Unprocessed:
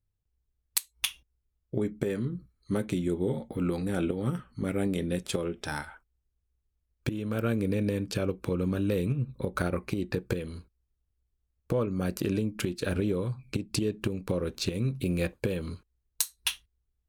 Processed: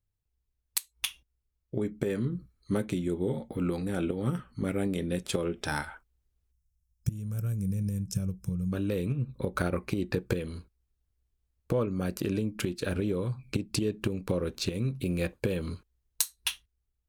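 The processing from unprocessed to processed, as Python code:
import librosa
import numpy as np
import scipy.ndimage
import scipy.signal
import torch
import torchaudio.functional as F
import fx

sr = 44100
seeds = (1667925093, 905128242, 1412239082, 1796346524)

y = fx.spec_box(x, sr, start_s=6.52, length_s=2.2, low_hz=210.0, high_hz=5100.0, gain_db=-20)
y = fx.rider(y, sr, range_db=3, speed_s=0.5)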